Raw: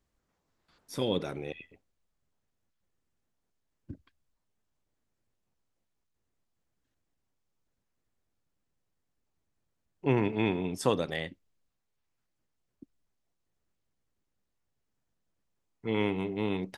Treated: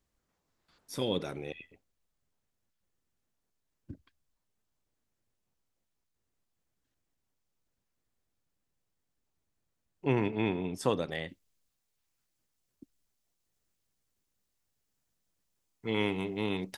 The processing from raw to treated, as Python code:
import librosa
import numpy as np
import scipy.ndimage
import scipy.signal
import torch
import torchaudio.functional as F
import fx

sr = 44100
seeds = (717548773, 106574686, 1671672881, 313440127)

y = fx.high_shelf(x, sr, hz=3300.0, db=fx.steps((0.0, 3.5), (10.28, -2.0), (11.28, 11.0)))
y = y * 10.0 ** (-2.0 / 20.0)